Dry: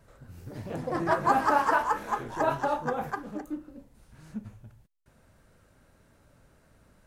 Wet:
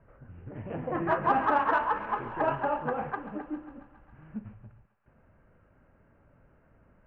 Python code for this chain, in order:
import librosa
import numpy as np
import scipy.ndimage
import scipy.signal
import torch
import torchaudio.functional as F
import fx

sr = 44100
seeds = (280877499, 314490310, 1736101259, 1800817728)

p1 = fx.env_lowpass(x, sr, base_hz=1800.0, full_db=-23.0)
p2 = scipy.signal.sosfilt(scipy.signal.butter(16, 3000.0, 'lowpass', fs=sr, output='sos'), p1)
p3 = 10.0 ** (-19.5 / 20.0) * np.tanh(p2 / 10.0 ** (-19.5 / 20.0))
p4 = p2 + F.gain(torch.from_numpy(p3), -7.0).numpy()
p5 = fx.echo_thinned(p4, sr, ms=136, feedback_pct=76, hz=360.0, wet_db=-15)
y = F.gain(torch.from_numpy(p5), -4.0).numpy()